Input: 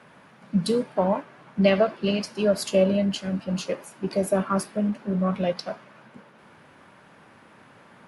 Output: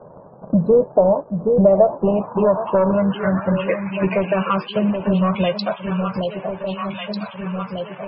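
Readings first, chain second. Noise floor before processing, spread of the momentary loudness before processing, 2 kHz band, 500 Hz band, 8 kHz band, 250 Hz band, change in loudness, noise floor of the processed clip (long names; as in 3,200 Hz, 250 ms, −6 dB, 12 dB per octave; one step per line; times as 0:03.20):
−53 dBFS, 9 LU, +5.5 dB, +8.0 dB, below −40 dB, +6.0 dB, +5.5 dB, −42 dBFS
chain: leveller curve on the samples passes 2
graphic EQ with 15 bands 250 Hz −8 dB, 1,000 Hz +7 dB, 2,500 Hz +6 dB
delay that swaps between a low-pass and a high-pass 773 ms, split 860 Hz, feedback 63%, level −11.5 dB
downward compressor 3 to 1, threshold −32 dBFS, peak gain reduction 16 dB
low-pass filter sweep 570 Hz → 3,700 Hz, 0:01.60–0:04.84
spectral peaks only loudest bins 64
low-shelf EQ 420 Hz +7 dB
level +8 dB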